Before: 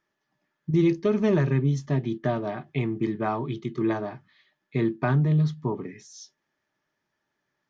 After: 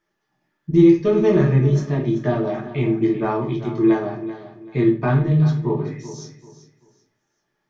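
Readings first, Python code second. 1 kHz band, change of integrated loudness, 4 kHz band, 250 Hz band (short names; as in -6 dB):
+4.0 dB, +7.0 dB, n/a, +7.5 dB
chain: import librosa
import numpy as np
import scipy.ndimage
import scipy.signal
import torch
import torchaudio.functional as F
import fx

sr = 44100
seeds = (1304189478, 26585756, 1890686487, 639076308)

p1 = x + fx.echo_feedback(x, sr, ms=386, feedback_pct=28, wet_db=-13.5, dry=0)
y = fx.room_shoebox(p1, sr, seeds[0], volume_m3=37.0, walls='mixed', distance_m=0.69)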